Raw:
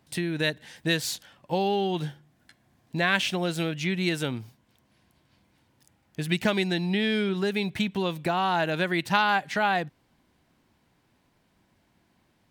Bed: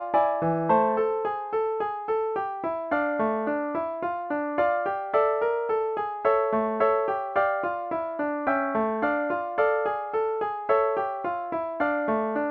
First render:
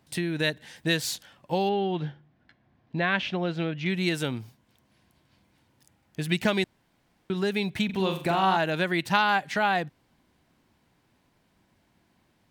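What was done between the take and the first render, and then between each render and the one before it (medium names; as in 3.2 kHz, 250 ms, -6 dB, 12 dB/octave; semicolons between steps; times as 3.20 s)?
1.69–3.86 s: distance through air 240 m; 6.64–7.30 s: room tone; 7.85–8.57 s: flutter echo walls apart 7.2 m, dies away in 0.41 s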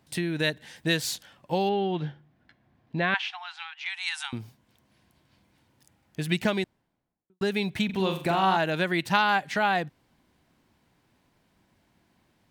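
3.14–4.33 s: brick-wall FIR band-pass 720–11000 Hz; 6.27–7.41 s: studio fade out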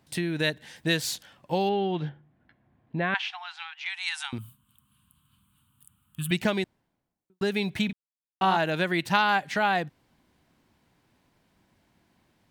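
2.09–3.15 s: distance through air 310 m; 4.38–6.31 s: FFT filter 160 Hz 0 dB, 250 Hz -4 dB, 400 Hz -27 dB, 680 Hz -26 dB, 1.2 kHz +6 dB, 2 kHz -17 dB, 3 kHz +4 dB, 5.5 kHz -19 dB, 8.4 kHz +8 dB, 14 kHz +10 dB; 7.93–8.41 s: mute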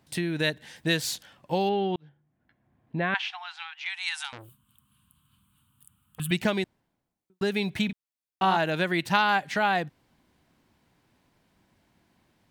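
1.96–2.97 s: fade in; 4.24–6.20 s: transformer saturation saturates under 2.7 kHz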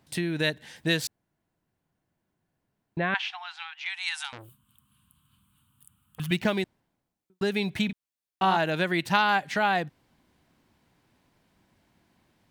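1.07–2.97 s: room tone; 6.21–6.62 s: median filter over 5 samples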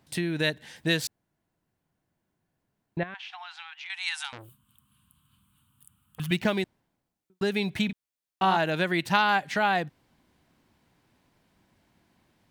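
3.03–3.90 s: compression 8:1, threshold -37 dBFS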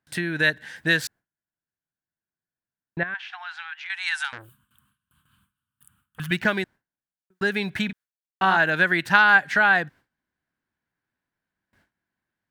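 gate with hold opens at -54 dBFS; peaking EQ 1.6 kHz +13.5 dB 0.6 oct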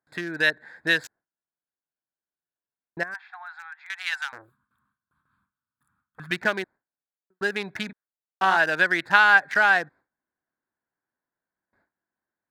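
local Wiener filter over 15 samples; tone controls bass -12 dB, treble +1 dB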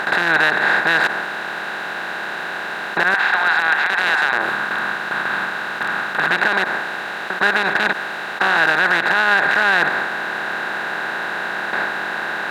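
spectral levelling over time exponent 0.2; peak limiter -5.5 dBFS, peak gain reduction 8.5 dB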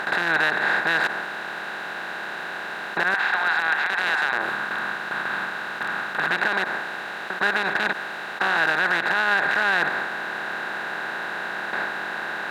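trim -5.5 dB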